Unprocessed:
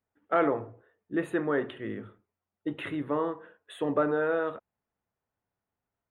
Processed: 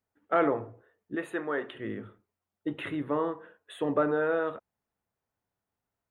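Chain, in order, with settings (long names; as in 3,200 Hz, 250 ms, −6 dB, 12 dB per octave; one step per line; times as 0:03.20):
0:01.15–0:01.75: high-pass filter 550 Hz 6 dB per octave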